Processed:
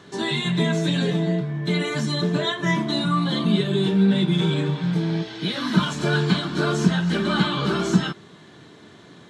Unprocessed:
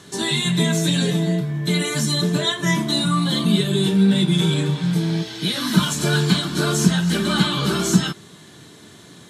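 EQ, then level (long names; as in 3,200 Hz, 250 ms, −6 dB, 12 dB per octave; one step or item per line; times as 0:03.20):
head-to-tape spacing loss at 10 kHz 21 dB
low-shelf EQ 250 Hz −7 dB
+2.5 dB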